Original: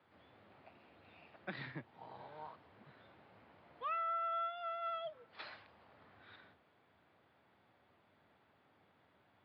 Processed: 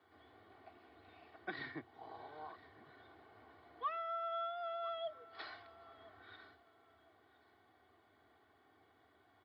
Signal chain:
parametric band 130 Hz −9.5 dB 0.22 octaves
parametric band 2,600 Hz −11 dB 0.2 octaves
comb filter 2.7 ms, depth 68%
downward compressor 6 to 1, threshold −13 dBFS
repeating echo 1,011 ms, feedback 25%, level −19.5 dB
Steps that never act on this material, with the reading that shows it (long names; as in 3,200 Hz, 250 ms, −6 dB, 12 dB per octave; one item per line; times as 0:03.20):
downward compressor, threshold −13 dBFS: peak of its input −29.0 dBFS